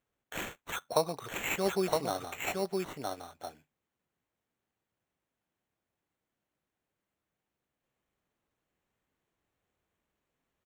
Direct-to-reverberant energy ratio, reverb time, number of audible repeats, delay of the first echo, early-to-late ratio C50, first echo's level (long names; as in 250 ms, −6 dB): no reverb audible, no reverb audible, 1, 964 ms, no reverb audible, −3.0 dB